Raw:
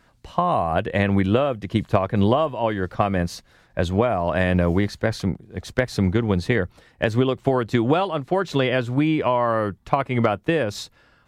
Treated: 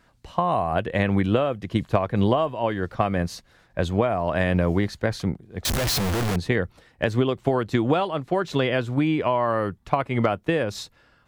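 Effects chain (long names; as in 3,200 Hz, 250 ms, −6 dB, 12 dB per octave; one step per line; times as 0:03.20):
0:05.65–0:06.36: sign of each sample alone
level −2 dB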